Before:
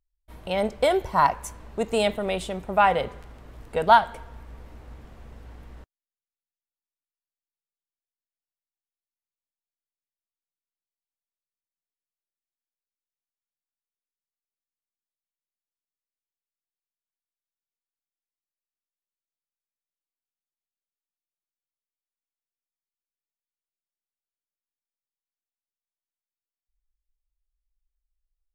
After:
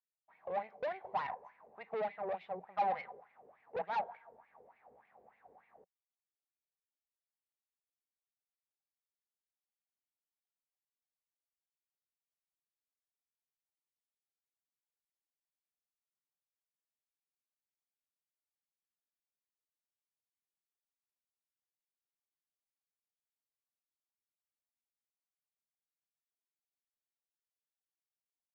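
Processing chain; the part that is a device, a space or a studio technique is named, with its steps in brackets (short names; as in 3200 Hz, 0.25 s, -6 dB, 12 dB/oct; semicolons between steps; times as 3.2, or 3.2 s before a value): wah-wah guitar rig (wah 3.4 Hz 430–2300 Hz, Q 5.5; tube stage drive 35 dB, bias 0.55; speaker cabinet 110–3600 Hz, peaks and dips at 180 Hz +6 dB, 310 Hz -5 dB, 780 Hz +10 dB, 1400 Hz -5 dB, 3100 Hz -8 dB)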